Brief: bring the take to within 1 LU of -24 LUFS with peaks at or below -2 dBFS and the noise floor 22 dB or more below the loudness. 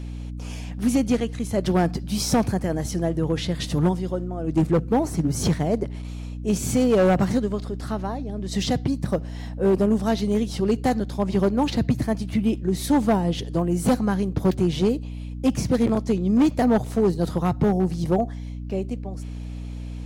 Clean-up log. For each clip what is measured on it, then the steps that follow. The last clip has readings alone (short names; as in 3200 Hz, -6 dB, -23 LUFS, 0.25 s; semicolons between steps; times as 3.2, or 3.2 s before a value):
clipped 1.3%; flat tops at -13.5 dBFS; hum 60 Hz; harmonics up to 300 Hz; hum level -30 dBFS; loudness -23.5 LUFS; peak -13.5 dBFS; loudness target -24.0 LUFS
-> clip repair -13.5 dBFS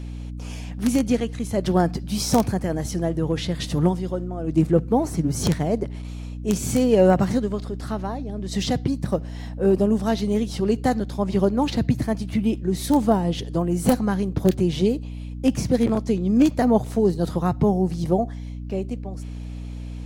clipped 0.0%; hum 60 Hz; harmonics up to 300 Hz; hum level -30 dBFS
-> de-hum 60 Hz, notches 5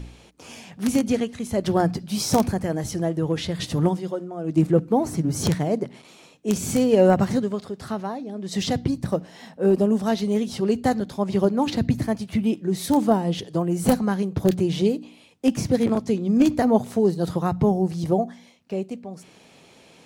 hum none; loudness -23.0 LUFS; peak -4.5 dBFS; loudness target -24.0 LUFS
-> gain -1 dB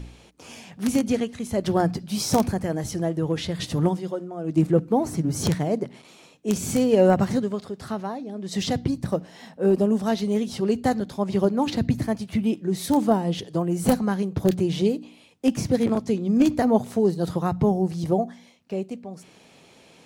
loudness -24.0 LUFS; peak -5.5 dBFS; noise floor -53 dBFS